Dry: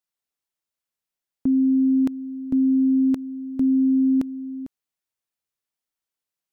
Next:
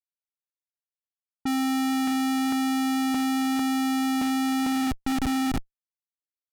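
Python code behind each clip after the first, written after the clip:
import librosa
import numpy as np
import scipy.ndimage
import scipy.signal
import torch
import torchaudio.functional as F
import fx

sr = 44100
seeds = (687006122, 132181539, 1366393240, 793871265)

y = fx.echo_diffused(x, sr, ms=535, feedback_pct=48, wet_db=-12.5)
y = fx.schmitt(y, sr, flips_db=-35.5)
y = fx.env_lowpass(y, sr, base_hz=550.0, full_db=-23.5)
y = y * librosa.db_to_amplitude(-1.5)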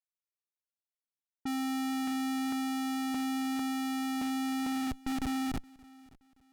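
y = fx.echo_feedback(x, sr, ms=573, feedback_pct=36, wet_db=-24.0)
y = y * librosa.db_to_amplitude(-8.0)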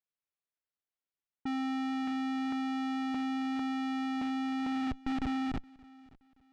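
y = scipy.signal.sosfilt(scipy.signal.butter(2, 3400.0, 'lowpass', fs=sr, output='sos'), x)
y = fx.rider(y, sr, range_db=10, speed_s=0.5)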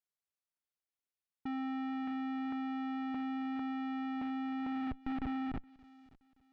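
y = fx.env_lowpass_down(x, sr, base_hz=2500.0, full_db=-34.0)
y = y * librosa.db_to_amplitude(-4.0)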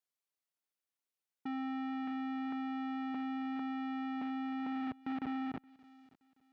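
y = scipy.signal.sosfilt(scipy.signal.butter(2, 180.0, 'highpass', fs=sr, output='sos'), x)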